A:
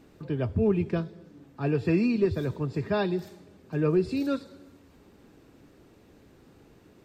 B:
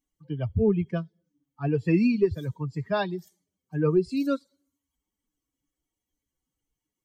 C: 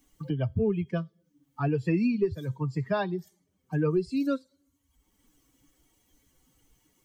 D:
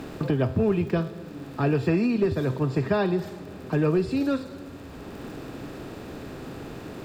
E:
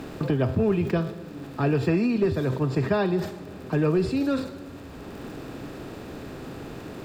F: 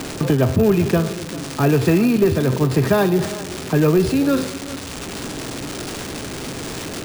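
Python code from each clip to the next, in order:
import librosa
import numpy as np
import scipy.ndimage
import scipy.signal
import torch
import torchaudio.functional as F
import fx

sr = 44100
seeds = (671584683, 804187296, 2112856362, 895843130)

y1 = fx.bin_expand(x, sr, power=2.0)
y1 = y1 * librosa.db_to_amplitude(4.5)
y2 = fx.comb_fb(y1, sr, f0_hz=130.0, decay_s=0.2, harmonics='all', damping=0.0, mix_pct=30)
y2 = fx.band_squash(y2, sr, depth_pct=70)
y3 = fx.bin_compress(y2, sr, power=0.4)
y3 = fx.dmg_crackle(y3, sr, seeds[0], per_s=58.0, level_db=-41.0)
y4 = fx.sustainer(y3, sr, db_per_s=100.0)
y5 = y4 + 0.5 * 10.0 ** (-27.5 / 20.0) * np.diff(np.sign(y4), prepend=np.sign(y4[:1]))
y5 = y5 + 10.0 ** (-16.5 / 20.0) * np.pad(y5, (int(394 * sr / 1000.0), 0))[:len(y5)]
y5 = np.repeat(y5[::3], 3)[:len(y5)]
y5 = y5 * librosa.db_to_amplitude(7.0)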